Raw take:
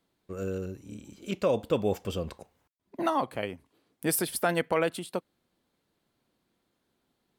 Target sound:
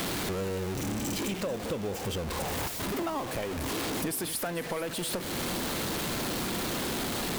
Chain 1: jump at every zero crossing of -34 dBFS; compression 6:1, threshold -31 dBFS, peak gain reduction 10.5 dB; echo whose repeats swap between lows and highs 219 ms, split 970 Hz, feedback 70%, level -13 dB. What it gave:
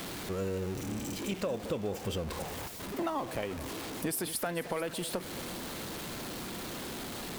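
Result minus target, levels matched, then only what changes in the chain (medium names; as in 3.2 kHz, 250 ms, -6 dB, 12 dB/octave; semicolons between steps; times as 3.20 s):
jump at every zero crossing: distortion -7 dB
change: jump at every zero crossing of -25 dBFS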